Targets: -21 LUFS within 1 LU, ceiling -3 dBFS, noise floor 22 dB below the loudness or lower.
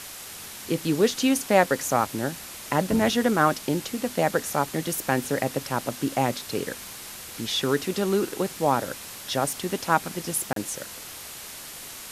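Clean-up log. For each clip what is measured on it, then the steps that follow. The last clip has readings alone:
dropouts 1; longest dropout 33 ms; noise floor -40 dBFS; noise floor target -48 dBFS; loudness -25.5 LUFS; peak level -5.0 dBFS; loudness target -21.0 LUFS
-> interpolate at 10.53 s, 33 ms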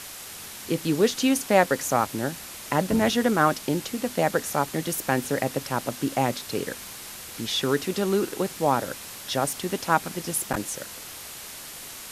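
dropouts 0; noise floor -40 dBFS; noise floor target -48 dBFS
-> noise reduction 8 dB, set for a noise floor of -40 dBFS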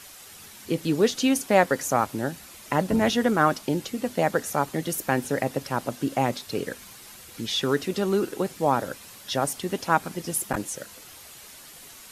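noise floor -46 dBFS; noise floor target -48 dBFS
-> noise reduction 6 dB, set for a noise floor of -46 dBFS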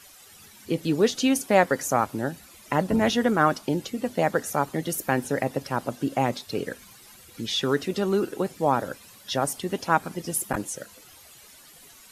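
noise floor -51 dBFS; loudness -26.0 LUFS; peak level -5.5 dBFS; loudness target -21.0 LUFS
-> trim +5 dB; peak limiter -3 dBFS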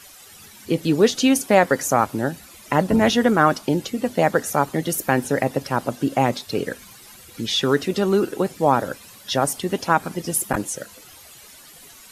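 loudness -21.0 LUFS; peak level -3.0 dBFS; noise floor -46 dBFS

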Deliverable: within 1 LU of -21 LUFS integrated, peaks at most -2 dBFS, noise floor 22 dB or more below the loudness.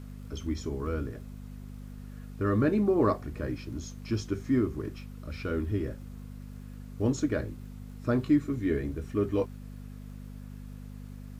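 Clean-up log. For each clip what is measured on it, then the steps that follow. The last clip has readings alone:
tick rate 23 per s; hum 50 Hz; highest harmonic 250 Hz; hum level -40 dBFS; loudness -30.5 LUFS; peak level -13.0 dBFS; loudness target -21.0 LUFS
-> de-click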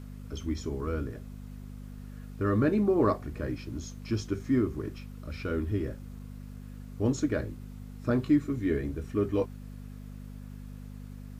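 tick rate 0.088 per s; hum 50 Hz; highest harmonic 250 Hz; hum level -39 dBFS
-> de-hum 50 Hz, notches 5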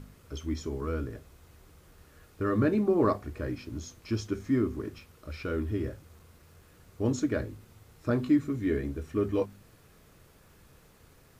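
hum not found; loudness -31.0 LUFS; peak level -13.0 dBFS; loudness target -21.0 LUFS
-> trim +10 dB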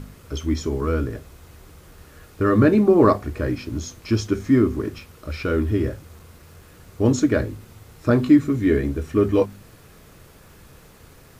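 loudness -21.0 LUFS; peak level -3.0 dBFS; noise floor -49 dBFS

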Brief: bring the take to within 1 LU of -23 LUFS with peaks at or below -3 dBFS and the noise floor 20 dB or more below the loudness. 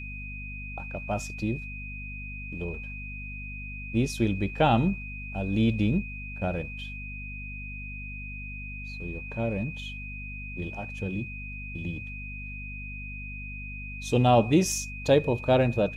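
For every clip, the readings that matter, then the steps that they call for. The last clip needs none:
hum 50 Hz; highest harmonic 250 Hz; hum level -38 dBFS; steady tone 2.5 kHz; tone level -39 dBFS; loudness -30.0 LUFS; peak level -9.0 dBFS; loudness target -23.0 LUFS
-> de-hum 50 Hz, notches 5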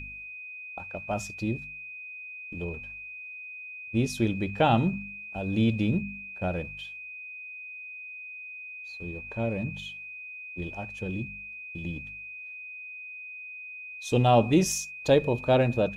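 hum not found; steady tone 2.5 kHz; tone level -39 dBFS
-> band-stop 2.5 kHz, Q 30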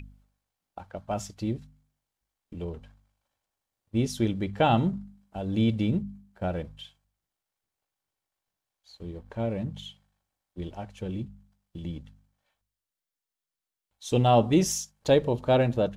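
steady tone not found; loudness -27.5 LUFS; peak level -9.0 dBFS; loudness target -23.0 LUFS
-> trim +4.5 dB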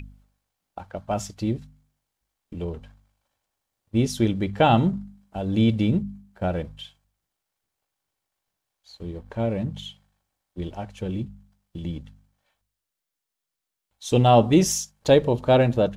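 loudness -23.0 LUFS; peak level -4.5 dBFS; noise floor -85 dBFS

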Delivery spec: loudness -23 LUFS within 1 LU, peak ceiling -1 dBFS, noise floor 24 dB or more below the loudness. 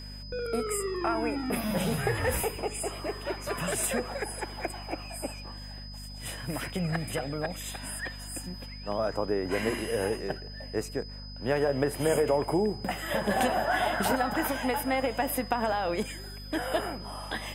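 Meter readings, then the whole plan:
hum 50 Hz; highest harmonic 250 Hz; hum level -41 dBFS; steady tone 5 kHz; tone level -45 dBFS; loudness -30.5 LUFS; peak level -12.0 dBFS; loudness target -23.0 LUFS
-> hum notches 50/100/150/200/250 Hz; band-stop 5 kHz, Q 30; trim +7.5 dB

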